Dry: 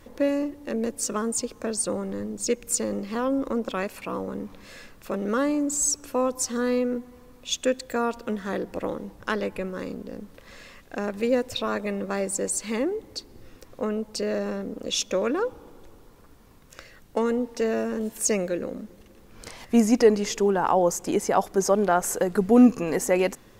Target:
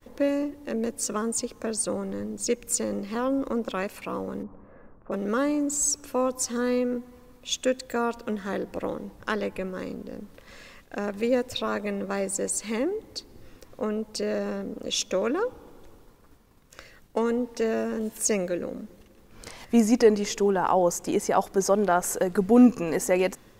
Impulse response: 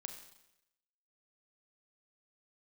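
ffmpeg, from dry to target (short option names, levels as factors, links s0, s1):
-filter_complex "[0:a]asplit=3[s0][s1][s2];[s0]afade=t=out:st=4.42:d=0.02[s3];[s1]lowpass=f=1200:w=0.5412,lowpass=f=1200:w=1.3066,afade=t=in:st=4.42:d=0.02,afade=t=out:st=5.11:d=0.02[s4];[s2]afade=t=in:st=5.11:d=0.02[s5];[s3][s4][s5]amix=inputs=3:normalize=0,agate=range=0.0224:threshold=0.00398:ratio=3:detection=peak,volume=0.891"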